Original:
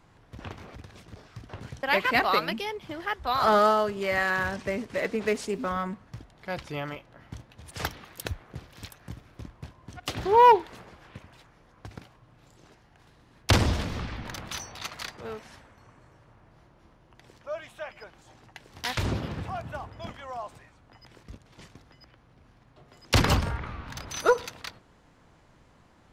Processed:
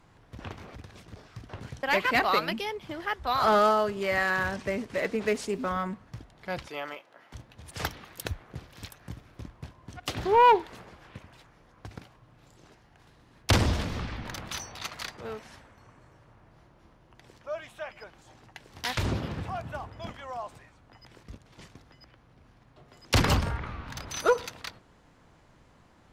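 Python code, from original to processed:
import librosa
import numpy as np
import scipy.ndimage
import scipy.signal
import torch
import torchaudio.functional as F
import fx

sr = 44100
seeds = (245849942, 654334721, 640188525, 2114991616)

p1 = fx.highpass(x, sr, hz=420.0, slope=12, at=(6.68, 7.34))
p2 = fx.fold_sine(p1, sr, drive_db=4, ceiling_db=-8.5)
p3 = p1 + F.gain(torch.from_numpy(p2), -6.5).numpy()
y = F.gain(torch.from_numpy(p3), -7.0).numpy()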